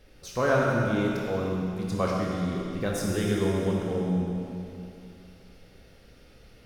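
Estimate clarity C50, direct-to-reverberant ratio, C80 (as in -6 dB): -1.0 dB, -3.0 dB, 0.5 dB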